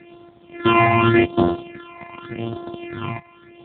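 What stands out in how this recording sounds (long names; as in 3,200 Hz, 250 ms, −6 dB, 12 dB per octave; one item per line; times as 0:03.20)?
a buzz of ramps at a fixed pitch in blocks of 128 samples
phaser sweep stages 8, 0.86 Hz, lowest notch 420–2,300 Hz
a quantiser's noise floor 10 bits, dither none
AMR narrowband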